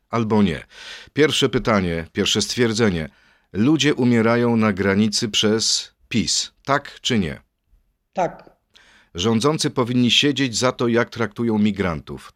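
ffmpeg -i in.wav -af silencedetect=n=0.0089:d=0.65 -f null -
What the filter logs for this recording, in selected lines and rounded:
silence_start: 7.39
silence_end: 8.16 | silence_duration: 0.76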